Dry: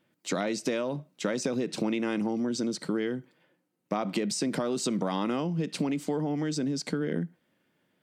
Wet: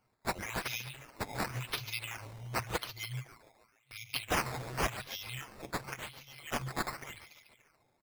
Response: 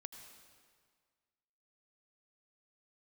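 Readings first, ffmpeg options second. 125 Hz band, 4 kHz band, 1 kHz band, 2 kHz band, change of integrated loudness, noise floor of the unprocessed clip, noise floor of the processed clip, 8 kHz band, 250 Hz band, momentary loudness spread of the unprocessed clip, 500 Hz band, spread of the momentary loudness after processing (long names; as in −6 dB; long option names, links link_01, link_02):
−6.0 dB, −2.0 dB, −1.5 dB, +1.5 dB, −7.5 dB, −75 dBFS, −74 dBFS, −6.0 dB, −18.0 dB, 5 LU, −12.5 dB, 12 LU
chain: -filter_complex "[0:a]alimiter=limit=-20dB:level=0:latency=1:release=210,aecho=1:1:7.2:0.71,asplit=7[link_01][link_02][link_03][link_04][link_05][link_06][link_07];[link_02]adelay=144,afreqshift=110,volume=-12dB[link_08];[link_03]adelay=288,afreqshift=220,volume=-17.4dB[link_09];[link_04]adelay=432,afreqshift=330,volume=-22.7dB[link_10];[link_05]adelay=576,afreqshift=440,volume=-28.1dB[link_11];[link_06]adelay=720,afreqshift=550,volume=-33.4dB[link_12];[link_07]adelay=864,afreqshift=660,volume=-38.8dB[link_13];[link_01][link_08][link_09][link_10][link_11][link_12][link_13]amix=inputs=7:normalize=0,afftfilt=real='re*(1-between(b*sr/4096,130,2000))':imag='im*(1-between(b*sr/4096,130,2000))':win_size=4096:overlap=0.75,acrusher=samples=10:mix=1:aa=0.000001:lfo=1:lforange=10:lforate=0.91,volume=2dB"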